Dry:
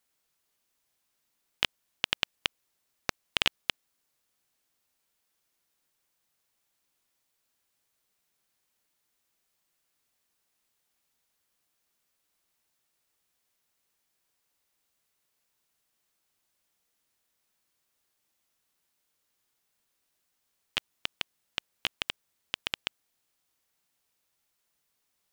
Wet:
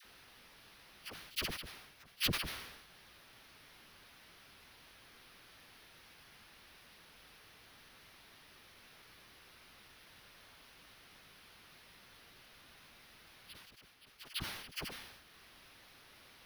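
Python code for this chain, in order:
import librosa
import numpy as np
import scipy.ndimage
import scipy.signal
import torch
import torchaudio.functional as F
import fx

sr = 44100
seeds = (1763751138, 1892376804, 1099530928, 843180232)

y = fx.band_shelf(x, sr, hz=2700.0, db=11.0, octaves=2.8)
y = fx.sample_hold(y, sr, seeds[0], rate_hz=7600.0, jitter_pct=0)
y = fx.auto_swell(y, sr, attack_ms=683.0)
y = fx.low_shelf(y, sr, hz=250.0, db=7.0)
y = fx.stretch_vocoder_free(y, sr, factor=0.65)
y = fx.transient(y, sr, attack_db=-8, sustain_db=2)
y = fx.dispersion(y, sr, late='lows', ms=49.0, hz=900.0)
y = fx.sustainer(y, sr, db_per_s=51.0)
y = y * 10.0 ** (15.0 / 20.0)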